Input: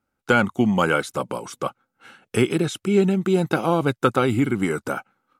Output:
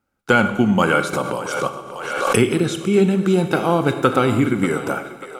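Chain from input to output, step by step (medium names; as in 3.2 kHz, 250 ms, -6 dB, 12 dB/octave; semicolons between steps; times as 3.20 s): two-band feedback delay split 390 Hz, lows 106 ms, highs 589 ms, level -14 dB; Schroeder reverb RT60 1.1 s, combs from 27 ms, DRR 9 dB; 1.13–2.41 s: swell ahead of each attack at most 41 dB/s; trim +2.5 dB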